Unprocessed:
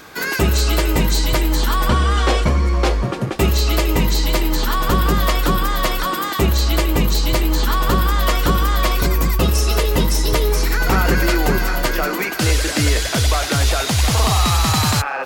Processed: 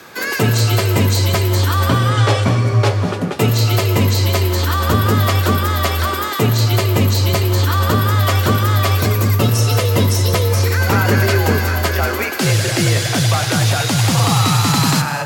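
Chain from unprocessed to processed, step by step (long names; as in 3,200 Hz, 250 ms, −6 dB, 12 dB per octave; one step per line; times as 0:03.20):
frequency shifter +48 Hz
reverb whose tail is shaped and stops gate 260 ms rising, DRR 10 dB
level +1 dB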